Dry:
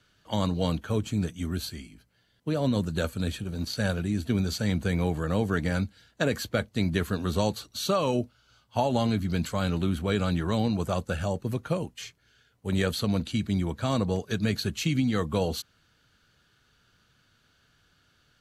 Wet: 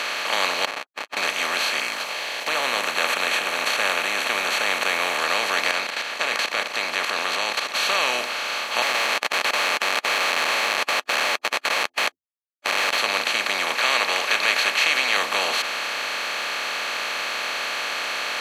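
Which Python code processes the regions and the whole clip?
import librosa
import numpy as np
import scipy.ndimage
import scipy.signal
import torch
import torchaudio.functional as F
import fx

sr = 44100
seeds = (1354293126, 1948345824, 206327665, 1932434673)

y = fx.chain(x, sr, fx.formant_cascade(vowel='u'),
    fx.octave_resonator(note='C#', decay_s=0.53),
    fx.backlash(play_db=-47.5), at=(0.65, 1.17))
y = fx.chain(y, sr, fx.block_float(bits=7),
    fx.env_phaser(low_hz=200.0, high_hz=4900.0, full_db=-31.5),
    fx.sustainer(db_per_s=120.0), at=(1.79, 5.19))
y = fx.chain(y, sr, fx.level_steps(step_db=19),
    fx.air_absorb(metres=59.0), at=(5.71, 7.74))
y = fx.chain(y, sr, fx.bandpass_edges(low_hz=780.0, high_hz=3600.0),
    fx.schmitt(flips_db=-41.5), at=(8.82, 12.98))
y = fx.chain(y, sr, fx.highpass(hz=450.0, slope=12),
    fx.peak_eq(hz=2300.0, db=13.0, octaves=1.3), at=(13.75, 15.17))
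y = fx.bin_compress(y, sr, power=0.2)
y = scipy.signal.sosfilt(scipy.signal.butter(2, 840.0, 'highpass', fs=sr, output='sos'), y)
y = fx.high_shelf(y, sr, hz=12000.0, db=-9.5)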